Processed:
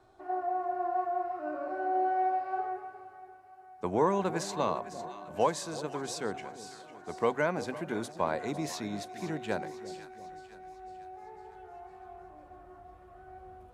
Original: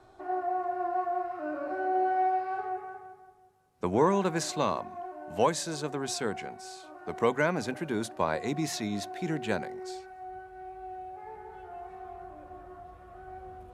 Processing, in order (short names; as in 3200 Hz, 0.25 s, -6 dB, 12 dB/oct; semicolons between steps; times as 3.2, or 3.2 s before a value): on a send: split-band echo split 780 Hz, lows 0.343 s, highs 0.502 s, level -13 dB; on the sum: dynamic EQ 720 Hz, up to +4 dB, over -36 dBFS, Q 0.73; gain -5 dB